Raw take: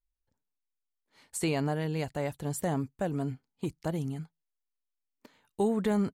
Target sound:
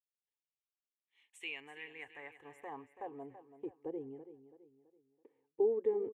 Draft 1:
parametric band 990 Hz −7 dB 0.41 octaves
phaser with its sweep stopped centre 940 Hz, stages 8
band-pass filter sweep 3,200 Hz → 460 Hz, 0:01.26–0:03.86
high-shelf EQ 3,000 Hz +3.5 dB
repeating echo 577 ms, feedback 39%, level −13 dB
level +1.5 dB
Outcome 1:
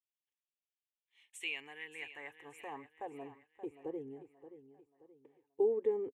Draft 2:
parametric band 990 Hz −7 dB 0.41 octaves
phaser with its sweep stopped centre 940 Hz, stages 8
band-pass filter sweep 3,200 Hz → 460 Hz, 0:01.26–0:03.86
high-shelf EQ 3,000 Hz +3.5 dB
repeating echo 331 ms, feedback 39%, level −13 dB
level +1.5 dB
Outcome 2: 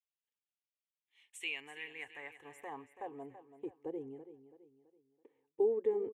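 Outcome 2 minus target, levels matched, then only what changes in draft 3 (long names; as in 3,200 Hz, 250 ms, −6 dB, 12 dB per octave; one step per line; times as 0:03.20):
8,000 Hz band +7.5 dB
change: high-shelf EQ 3,000 Hz −5.5 dB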